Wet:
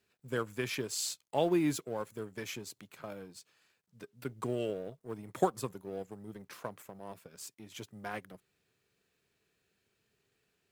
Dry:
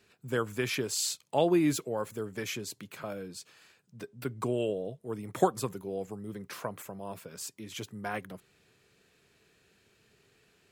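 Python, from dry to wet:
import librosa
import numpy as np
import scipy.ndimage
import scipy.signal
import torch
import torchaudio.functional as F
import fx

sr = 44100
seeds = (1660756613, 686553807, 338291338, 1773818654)

y = fx.law_mismatch(x, sr, coded='A')
y = y * librosa.db_to_amplitude(-3.0)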